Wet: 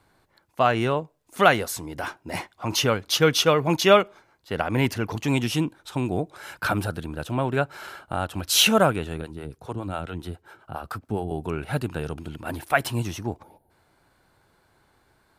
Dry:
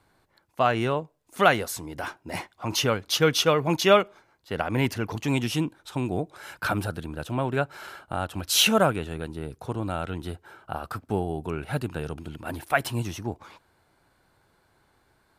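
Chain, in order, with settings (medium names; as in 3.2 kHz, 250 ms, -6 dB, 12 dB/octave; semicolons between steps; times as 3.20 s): 9.21–11.31 s: harmonic tremolo 7.3 Hz, depth 70%, crossover 400 Hz; 13.43–13.70 s: time-frequency box 930–9100 Hz -22 dB; trim +2 dB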